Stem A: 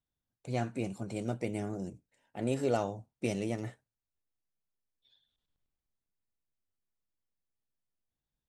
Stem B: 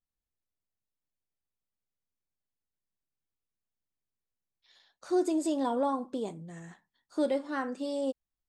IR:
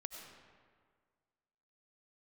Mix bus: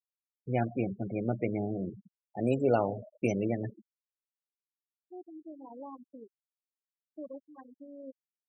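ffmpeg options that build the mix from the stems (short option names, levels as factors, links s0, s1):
-filter_complex "[0:a]volume=1.33,asplit=3[s0][s1][s2];[s1]volume=0.376[s3];[1:a]aeval=exprs='0.126*(cos(1*acos(clip(val(0)/0.126,-1,1)))-cos(1*PI/2))+0.0282*(cos(2*acos(clip(val(0)/0.126,-1,1)))-cos(2*PI/2))+0.0112*(cos(6*acos(clip(val(0)/0.126,-1,1)))-cos(6*PI/2))':c=same,volume=0.141,asplit=2[s4][s5];[s5]volume=0.596[s6];[s2]apad=whole_len=374057[s7];[s4][s7]sidechaincompress=threshold=0.00158:ratio=3:attack=30:release=1290[s8];[2:a]atrim=start_sample=2205[s9];[s3][s6]amix=inputs=2:normalize=0[s10];[s10][s9]afir=irnorm=-1:irlink=0[s11];[s0][s8][s11]amix=inputs=3:normalize=0,highpass=f=73:p=1,afftfilt=real='re*gte(hypot(re,im),0.0282)':imag='im*gte(hypot(re,im),0.0282)':win_size=1024:overlap=0.75"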